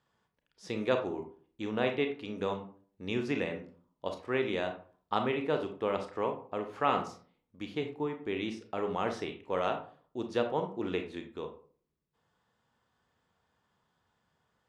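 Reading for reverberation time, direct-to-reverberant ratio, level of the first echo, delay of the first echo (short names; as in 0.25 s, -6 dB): 0.45 s, 5.0 dB, none, none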